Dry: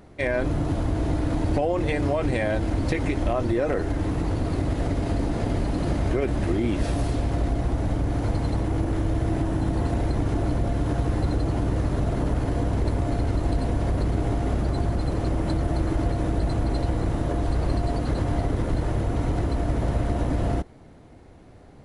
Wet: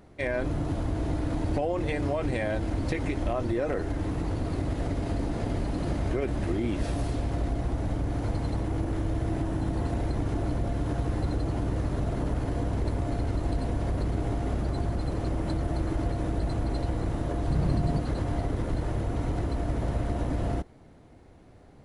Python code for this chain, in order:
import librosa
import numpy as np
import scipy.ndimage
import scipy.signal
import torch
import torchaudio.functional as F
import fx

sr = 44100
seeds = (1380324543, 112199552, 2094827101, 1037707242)

y = fx.peak_eq(x, sr, hz=160.0, db=12.5, octaves=0.77, at=(17.47, 18.0))
y = F.gain(torch.from_numpy(y), -4.5).numpy()